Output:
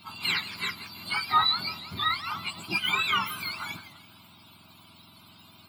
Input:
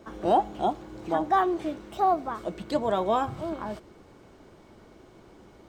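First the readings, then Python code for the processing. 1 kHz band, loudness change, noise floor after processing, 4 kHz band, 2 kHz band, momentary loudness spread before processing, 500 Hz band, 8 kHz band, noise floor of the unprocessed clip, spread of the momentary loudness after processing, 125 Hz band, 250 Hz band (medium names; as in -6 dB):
-4.5 dB, 0.0 dB, -55 dBFS, +17.5 dB, +11.5 dB, 11 LU, -22.0 dB, no reading, -54 dBFS, 12 LU, -2.5 dB, -12.5 dB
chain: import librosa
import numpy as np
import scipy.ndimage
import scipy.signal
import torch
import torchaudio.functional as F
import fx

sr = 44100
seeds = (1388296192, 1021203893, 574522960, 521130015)

y = fx.octave_mirror(x, sr, pivot_hz=1200.0)
y = fx.fixed_phaser(y, sr, hz=1800.0, stages=6)
y = fx.echo_warbled(y, sr, ms=166, feedback_pct=42, rate_hz=2.8, cents=218, wet_db=-13.5)
y = y * 10.0 ** (7.0 / 20.0)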